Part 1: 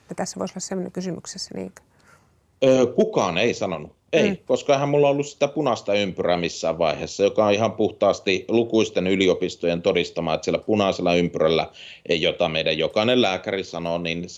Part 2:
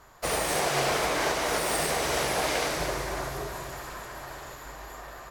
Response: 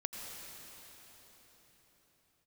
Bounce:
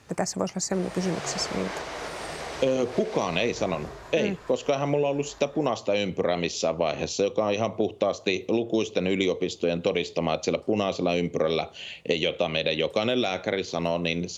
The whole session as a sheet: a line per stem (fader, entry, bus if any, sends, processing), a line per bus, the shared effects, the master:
+2.0 dB, 0.00 s, no send, no processing
−14.0 dB, 0.50 s, no send, low-pass filter 6,100 Hz 12 dB per octave; automatic gain control gain up to 7 dB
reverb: not used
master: downward compressor, threshold −21 dBFS, peak gain reduction 11 dB

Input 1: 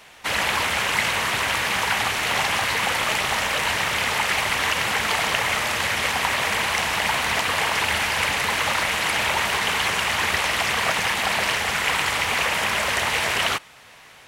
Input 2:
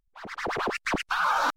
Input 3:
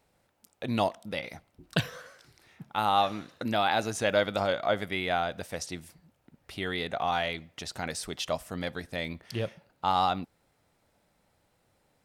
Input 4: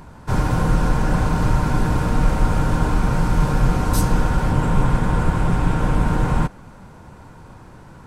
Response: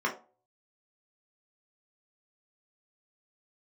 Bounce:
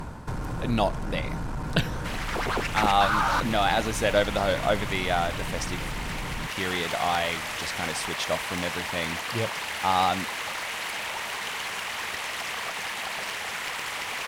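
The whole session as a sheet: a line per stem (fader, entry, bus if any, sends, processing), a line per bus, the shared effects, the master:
−6.0 dB, 1.80 s, bus A, no send, wavefolder on the positive side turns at −18 dBFS; low-shelf EQ 180 Hz −10 dB
0.0 dB, 1.90 s, no bus, no send, no processing
+2.5 dB, 0.00 s, no bus, no send, no processing
−5.5 dB, 0.00 s, bus A, no send, sine wavefolder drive 8 dB, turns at −4.5 dBFS; automatic ducking −12 dB, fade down 0.40 s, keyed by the third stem
bus A: 0.0 dB, downward compressor, threshold −29 dBFS, peak gain reduction 8 dB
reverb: not used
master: no processing

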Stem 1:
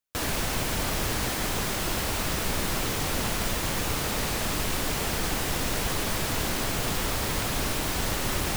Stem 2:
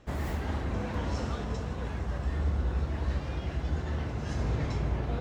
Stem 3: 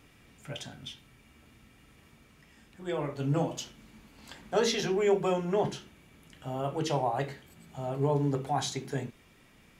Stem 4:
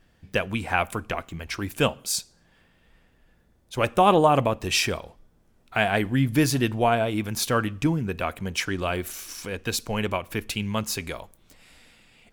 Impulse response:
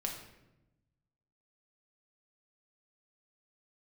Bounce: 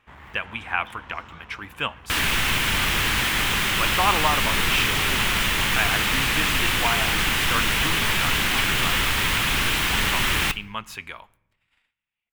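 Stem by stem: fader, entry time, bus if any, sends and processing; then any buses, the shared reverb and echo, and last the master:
+1.5 dB, 1.95 s, send −14 dB, parametric band 910 Hz −10 dB 1.9 octaves
−15.0 dB, 0.00 s, no send, asymmetric clip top −33 dBFS
−16.0 dB, 0.00 s, no send, no processing
−13.0 dB, 0.00 s, send −20.5 dB, noise gate −50 dBFS, range −30 dB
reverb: on, RT60 0.95 s, pre-delay 5 ms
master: flat-topped bell 1,700 Hz +13 dB 2.3 octaves

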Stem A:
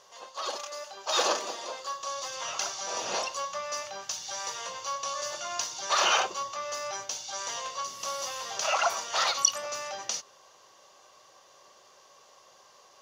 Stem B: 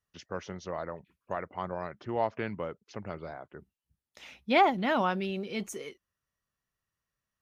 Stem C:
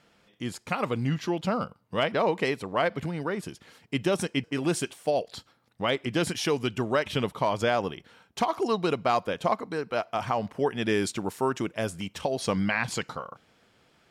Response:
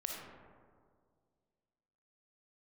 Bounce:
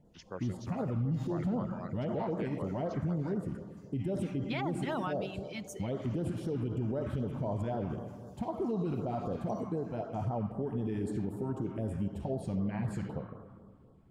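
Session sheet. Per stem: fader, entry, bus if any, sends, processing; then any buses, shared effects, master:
0:01.14 −12 dB → 0:01.52 −20.5 dB, 0.05 s, bus A, send −10.5 dB, tuned comb filter 71 Hz, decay 0.16 s, harmonics odd, mix 80%
−6.0 dB, 0.00 s, no bus, send −15 dB, reverb reduction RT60 0.68 s
−6.0 dB, 0.00 s, bus A, send −9.5 dB, spectral tilt −3.5 dB per octave
bus A: 0.0 dB, elliptic band-stop filter 980–7,200 Hz; brickwall limiter −24.5 dBFS, peak gain reduction 10 dB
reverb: on, RT60 2.0 s, pre-delay 15 ms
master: auto-filter notch sine 3.9 Hz 420–2,600 Hz; brickwall limiter −25.5 dBFS, peak gain reduction 9 dB

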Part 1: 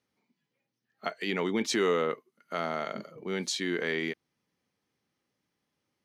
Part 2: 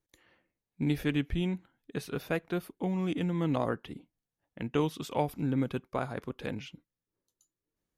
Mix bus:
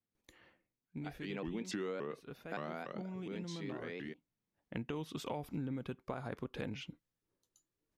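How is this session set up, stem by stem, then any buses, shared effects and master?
0:01.04 −16.5 dB → 0:01.80 −5.5 dB → 0:02.69 −5.5 dB → 0:03.39 −16 dB, 0.00 s, no send, low-shelf EQ 400 Hz +8 dB; pitch modulation by a square or saw wave saw up 3.5 Hz, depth 250 cents
+1.5 dB, 0.15 s, no send, brickwall limiter −22.5 dBFS, peak gain reduction 7.5 dB; automatic ducking −14 dB, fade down 0.60 s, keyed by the first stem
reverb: not used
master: high-shelf EQ 7,600 Hz −6.5 dB; downward compressor 6 to 1, threshold −37 dBFS, peak gain reduction 12.5 dB

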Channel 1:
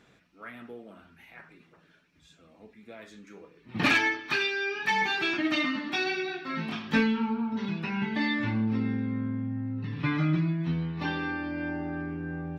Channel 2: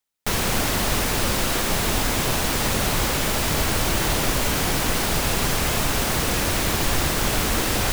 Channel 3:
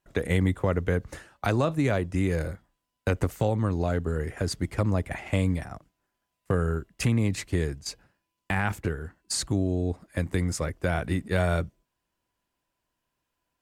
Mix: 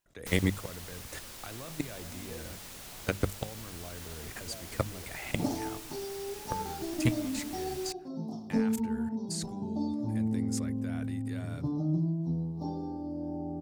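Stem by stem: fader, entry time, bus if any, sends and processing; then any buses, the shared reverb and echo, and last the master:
−2.0 dB, 1.60 s, no send, Chebyshev band-stop filter 780–5,400 Hz, order 3; high-shelf EQ 2,300 Hz −11 dB
−16.0 dB, 0.00 s, no send, automatic ducking −12 dB, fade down 0.50 s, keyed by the third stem
−0.5 dB, 0.00 s, no send, output level in coarse steps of 22 dB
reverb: not used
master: high-shelf EQ 2,500 Hz +8.5 dB; mains-hum notches 50/100/150/200 Hz

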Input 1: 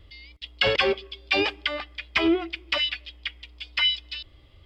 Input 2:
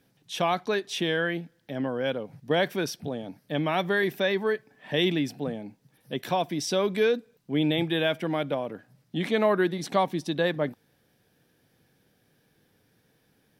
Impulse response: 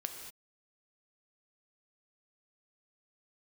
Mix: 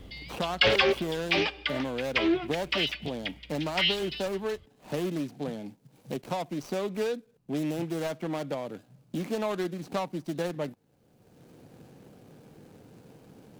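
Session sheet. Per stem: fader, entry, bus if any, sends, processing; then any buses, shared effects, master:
+2.5 dB, 0.00 s, send −20 dB, automatic ducking −8 dB, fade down 1.50 s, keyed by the second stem
−4.5 dB, 0.00 s, no send, running median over 25 samples; high-shelf EQ 4,800 Hz +9.5 dB; multiband upward and downward compressor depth 70%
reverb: on, pre-delay 3 ms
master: highs frequency-modulated by the lows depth 0.35 ms

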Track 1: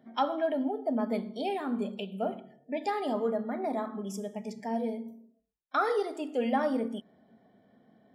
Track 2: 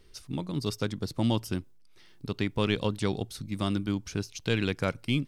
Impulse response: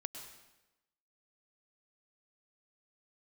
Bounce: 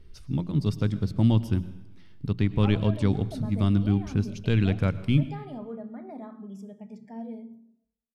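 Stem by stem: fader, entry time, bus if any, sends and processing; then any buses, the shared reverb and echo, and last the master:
−12.0 dB, 2.45 s, send −21 dB, no processing
−5.5 dB, 0.00 s, send −4.5 dB, mains-hum notches 60/120/180 Hz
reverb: on, RT60 1.0 s, pre-delay 98 ms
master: bass and treble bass +13 dB, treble −7 dB

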